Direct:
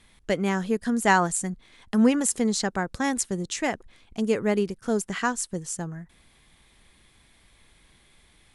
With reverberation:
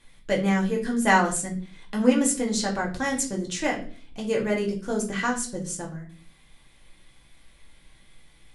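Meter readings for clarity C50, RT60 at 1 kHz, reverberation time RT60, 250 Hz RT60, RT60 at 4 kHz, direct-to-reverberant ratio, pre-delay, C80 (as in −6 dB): 10.0 dB, 0.35 s, 0.45 s, 0.65 s, 0.40 s, −1.5 dB, 3 ms, 15.5 dB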